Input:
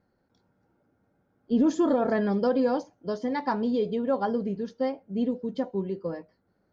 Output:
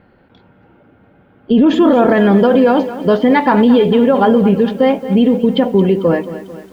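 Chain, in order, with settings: resonant high shelf 4200 Hz -13 dB, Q 3; maximiser +23.5 dB; lo-fi delay 0.223 s, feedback 55%, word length 6-bit, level -13.5 dB; gain -2.5 dB

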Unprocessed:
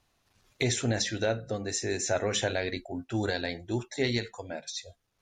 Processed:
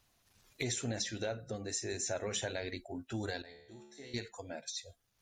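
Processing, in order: bin magnitudes rounded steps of 15 dB; high shelf 7700 Hz +10 dB; compressor 1.5:1, threshold -45 dBFS, peak gain reduction 8 dB; 3.42–4.14 resonator 72 Hz, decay 0.94 s, harmonics all, mix 90%; gain -1.5 dB

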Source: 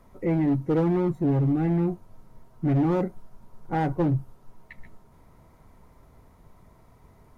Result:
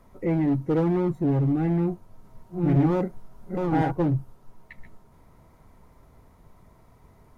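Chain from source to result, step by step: 1.71–3.92 reverse delay 0.527 s, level -3 dB

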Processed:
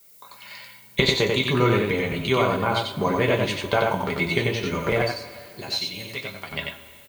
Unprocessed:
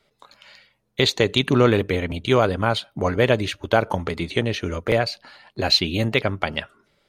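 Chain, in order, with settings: recorder AGC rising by 16 dB/s; 5.02–6.52 pre-emphasis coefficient 0.8; small resonant body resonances 1000/2200 Hz, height 12 dB, ringing for 65 ms; added noise violet -49 dBFS; on a send: echo 92 ms -3.5 dB; on the sum: two-slope reverb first 0.2 s, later 2.4 s, from -20 dB, DRR 0.5 dB; gain -6.5 dB

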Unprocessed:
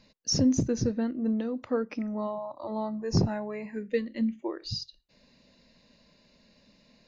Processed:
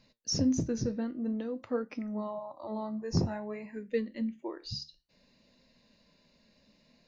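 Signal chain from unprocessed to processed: flange 0.53 Hz, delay 7.3 ms, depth 7.5 ms, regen +73%

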